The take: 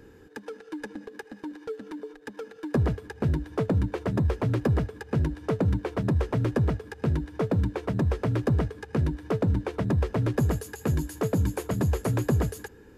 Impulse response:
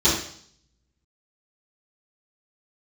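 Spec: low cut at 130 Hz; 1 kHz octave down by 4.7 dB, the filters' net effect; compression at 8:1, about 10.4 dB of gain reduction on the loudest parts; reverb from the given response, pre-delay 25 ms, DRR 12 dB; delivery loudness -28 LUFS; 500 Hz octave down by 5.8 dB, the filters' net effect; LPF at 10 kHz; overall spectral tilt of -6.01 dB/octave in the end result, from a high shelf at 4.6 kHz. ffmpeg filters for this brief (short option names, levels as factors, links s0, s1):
-filter_complex "[0:a]highpass=130,lowpass=10000,equalizer=f=500:t=o:g=-6.5,equalizer=f=1000:t=o:g=-3.5,highshelf=f=4600:g=-6.5,acompressor=threshold=0.02:ratio=8,asplit=2[s0][s1];[1:a]atrim=start_sample=2205,adelay=25[s2];[s1][s2]afir=irnorm=-1:irlink=0,volume=0.0335[s3];[s0][s3]amix=inputs=2:normalize=0,volume=3.98"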